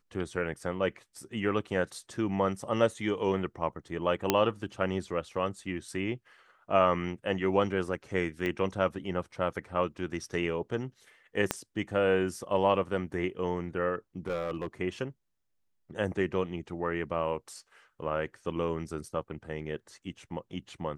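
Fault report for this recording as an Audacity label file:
4.300000	4.300000	pop -7 dBFS
8.460000	8.460000	pop -20 dBFS
11.510000	11.510000	pop -11 dBFS
14.270000	14.670000	clipped -27.5 dBFS

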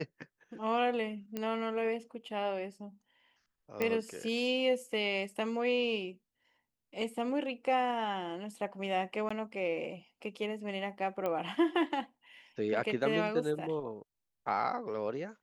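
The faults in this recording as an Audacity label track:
1.370000	1.370000	pop -22 dBFS
3.820000	3.820000	pop -18 dBFS
9.290000	9.300000	gap 15 ms
11.260000	11.260000	pop -22 dBFS

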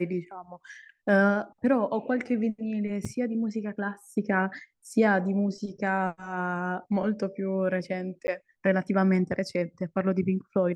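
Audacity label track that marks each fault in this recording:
3.050000	3.050000	gap 2.9 ms
8.270000	8.280000	gap 10 ms

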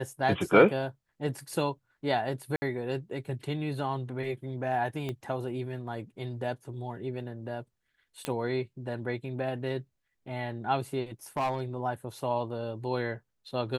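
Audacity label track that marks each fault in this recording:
2.560000	2.620000	gap 60 ms
5.090000	5.090000	pop -22 dBFS
8.250000	8.250000	pop -16 dBFS
11.370000	11.770000	clipped -24.5 dBFS

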